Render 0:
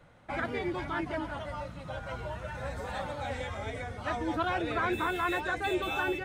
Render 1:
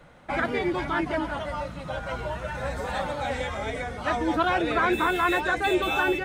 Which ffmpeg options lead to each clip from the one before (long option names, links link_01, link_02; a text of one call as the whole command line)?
ffmpeg -i in.wav -af "equalizer=frequency=100:width_type=o:width=0.27:gain=-15,volume=7dB" out.wav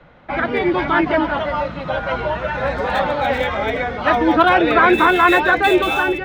ffmpeg -i in.wav -filter_complex "[0:a]acrossover=split=180|4600[link_01][link_02][link_03];[link_02]dynaudnorm=framelen=170:gausssize=7:maxgain=6.5dB[link_04];[link_03]acrusher=bits=6:mix=0:aa=0.000001[link_05];[link_01][link_04][link_05]amix=inputs=3:normalize=0,volume=4.5dB" out.wav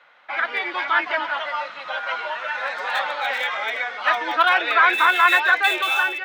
ffmpeg -i in.wav -af "highpass=1200,volume=1dB" out.wav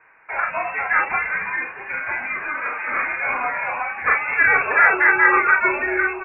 ffmpeg -i in.wav -filter_complex "[0:a]asplit=2[link_01][link_02];[link_02]aecho=0:1:33|48:0.501|0.422[link_03];[link_01][link_03]amix=inputs=2:normalize=0,lowpass=frequency=2600:width_type=q:width=0.5098,lowpass=frequency=2600:width_type=q:width=0.6013,lowpass=frequency=2600:width_type=q:width=0.9,lowpass=frequency=2600:width_type=q:width=2.563,afreqshift=-3000" out.wav